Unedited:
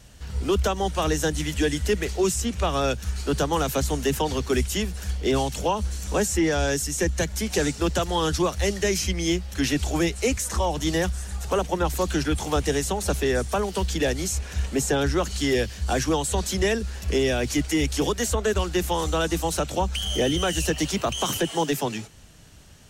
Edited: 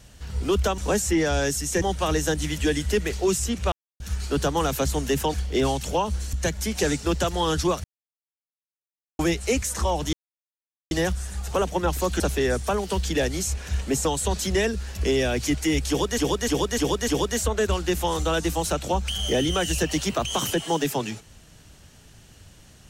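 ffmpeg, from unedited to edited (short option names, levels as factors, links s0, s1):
-filter_complex "[0:a]asplit=16[s0][s1][s2][s3][s4][s5][s6][s7][s8][s9][s10][s11][s12][s13][s14][s15];[s0]atrim=end=0.782[s16];[s1]atrim=start=6.038:end=7.082[s17];[s2]atrim=start=0.778:end=2.68,asetpts=PTS-STARTPTS,afade=t=out:st=1.898:d=0.004:c=hsin[s18];[s3]atrim=start=2.68:end=2.96,asetpts=PTS-STARTPTS,volume=0[s19];[s4]atrim=start=2.96:end=4.302,asetpts=PTS-STARTPTS,afade=t=in:d=0.004:c=hsin[s20];[s5]atrim=start=5.048:end=6.042[s21];[s6]atrim=start=7.078:end=8.59,asetpts=PTS-STARTPTS,afade=t=out:st=1.508:d=0.004:c=hsin[s22];[s7]atrim=start=8.59:end=9.94,asetpts=PTS-STARTPTS,volume=0[s23];[s8]atrim=start=9.94:end=10.88,asetpts=PTS-STARTPTS,afade=t=in:d=0.004:c=hsin,afade=t=out:st=0.936:d=0.004:c=hsin,apad=pad_dur=0.78[s24];[s9]atrim=start=10.88:end=12.172,asetpts=PTS-STARTPTS,afade=t=in:d=0.004:c=hsin[s25];[s10]atrim=start=13.048:end=14.902[s26];[s11]atrim=start=16.118:end=18.252[s27];[s12]atrim=start=17.948:end=18.252[s28];[s13]atrim=start=17.948:end=18.252[s29];[s14]atrim=start=17.948:end=18.252[s30];[s15]atrim=start=17.948[s31];[s16][s17]acrossfade=d=0.004:c1=hsin:c2=hsin[s32];[s18][s19][s20]concat=n=3:v=0:a=1[s33];[s32][s33]acrossfade=d=0.004:c1=hsin:c2=hsin[s34];[s34][s21]acrossfade=d=0.004:c1=hsin:c2=hsin[s35];[s22][s23][s24][s25]concat=n=4:v=0:a=1[s36];[s35][s36]acrossfade=d=0.004:c1=hsin:c2=hsin[s37];[s37][s26]acrossfade=d=0.004:c1=hsin:c2=hsin[s38];[s38][s27]acrossfade=d=0.004:c1=hsin:c2=hsin[s39];[s39][s28]acrossfade=d=0.004:c1=hsin:c2=hsin[s40];[s40][s29]acrossfade=d=0.004:c1=hsin:c2=hsin[s41];[s41][s30]acrossfade=d=0.004:c1=hsin:c2=hsin[s42];[s42][s31]acrossfade=d=0.004:c1=hsin:c2=hsin"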